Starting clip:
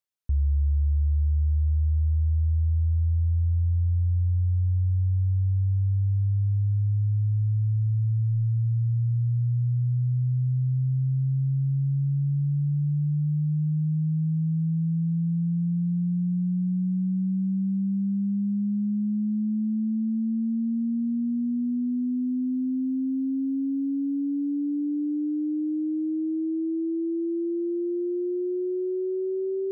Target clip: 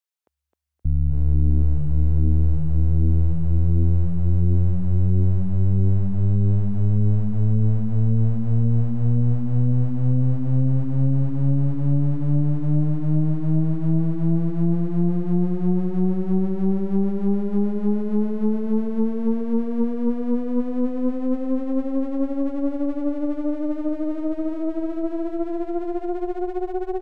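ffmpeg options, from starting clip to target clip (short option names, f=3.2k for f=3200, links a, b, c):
-filter_complex "[0:a]acrossover=split=440[a][b];[a]adelay=650[c];[c][b]amix=inputs=2:normalize=0,atempo=1.1,aeval=exprs='clip(val(0),-1,0.0188)':c=same,asplit=2[d][e];[e]aecho=0:1:261|522|783|1044|1305|1566:0.531|0.265|0.133|0.0664|0.0332|0.0166[f];[d][f]amix=inputs=2:normalize=0,aeval=exprs='0.2*(cos(1*acos(clip(val(0)/0.2,-1,1)))-cos(1*PI/2))+0.0794*(cos(4*acos(clip(val(0)/0.2,-1,1)))-cos(4*PI/2))':c=same"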